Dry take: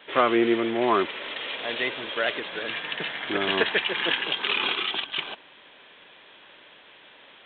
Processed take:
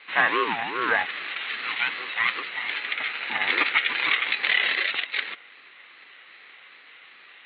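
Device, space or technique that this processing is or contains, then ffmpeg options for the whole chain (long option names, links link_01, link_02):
voice changer toy: -filter_complex "[0:a]aeval=exprs='val(0)*sin(2*PI*600*n/s+600*0.25/2.5*sin(2*PI*2.5*n/s))':channel_layout=same,highpass=490,equalizer=frequency=630:width_type=q:width=4:gain=-4,equalizer=frequency=940:width_type=q:width=4:gain=-8,equalizer=frequency=2000:width_type=q:width=4:gain=8,lowpass=frequency=3600:width=0.5412,lowpass=frequency=3600:width=1.3066,asettb=1/sr,asplit=3[link_01][link_02][link_03];[link_01]atrim=end=2.444[link_04];[link_02]atrim=start=2.44:end=3.98,asetpts=PTS-STARTPTS,afade=type=in:duration=0.004:curve=qsin,afade=type=out:start_time=1.536:duration=0.004:curve=qsin,bandreject=frequency=1100:width=9.2[link_05];[link_03]atrim=start=3.976[link_06];[link_04][link_05]acrossfade=duration=0.004:curve1=hsin:curve2=qsin[link_07];[link_07][link_06]acrossfade=duration=0.004:curve1=qsin:curve2=hsin,volume=4dB"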